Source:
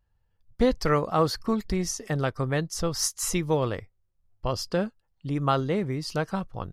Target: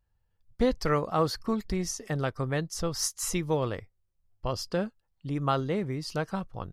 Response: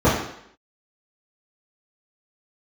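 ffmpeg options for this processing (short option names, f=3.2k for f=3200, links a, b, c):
-af "volume=-3dB"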